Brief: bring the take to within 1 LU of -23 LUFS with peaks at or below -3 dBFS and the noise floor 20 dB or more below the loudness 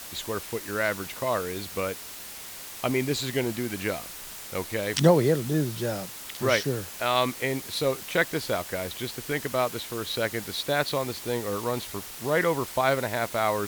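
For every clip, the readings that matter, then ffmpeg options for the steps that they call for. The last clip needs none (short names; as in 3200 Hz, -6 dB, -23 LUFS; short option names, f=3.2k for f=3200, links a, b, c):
noise floor -41 dBFS; noise floor target -48 dBFS; loudness -28.0 LUFS; peak -7.0 dBFS; loudness target -23.0 LUFS
-> -af "afftdn=nr=7:nf=-41"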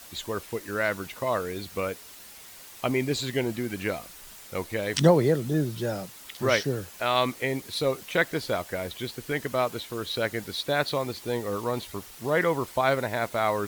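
noise floor -47 dBFS; noise floor target -48 dBFS
-> -af "afftdn=nr=6:nf=-47"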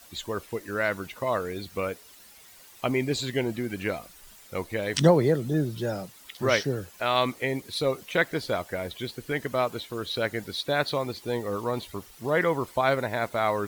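noise floor -52 dBFS; loudness -28.0 LUFS; peak -7.0 dBFS; loudness target -23.0 LUFS
-> -af "volume=5dB,alimiter=limit=-3dB:level=0:latency=1"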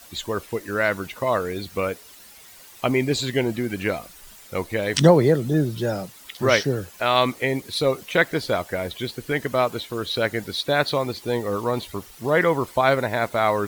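loudness -23.0 LUFS; peak -3.0 dBFS; noise floor -47 dBFS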